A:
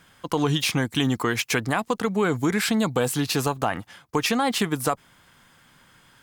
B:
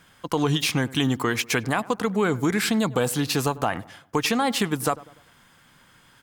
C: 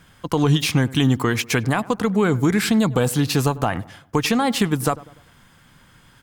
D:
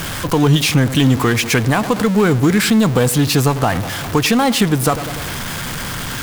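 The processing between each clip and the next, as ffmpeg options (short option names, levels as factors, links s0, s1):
-filter_complex "[0:a]asplit=2[s0][s1];[s1]adelay=98,lowpass=f=1500:p=1,volume=0.112,asplit=2[s2][s3];[s3]adelay=98,lowpass=f=1500:p=1,volume=0.47,asplit=2[s4][s5];[s5]adelay=98,lowpass=f=1500:p=1,volume=0.47,asplit=2[s6][s7];[s7]adelay=98,lowpass=f=1500:p=1,volume=0.47[s8];[s0][s2][s4][s6][s8]amix=inputs=5:normalize=0"
-af "lowshelf=f=180:g=10,volume=1.19"
-af "aeval=exprs='val(0)+0.5*0.0794*sgn(val(0))':c=same,volume=1.41"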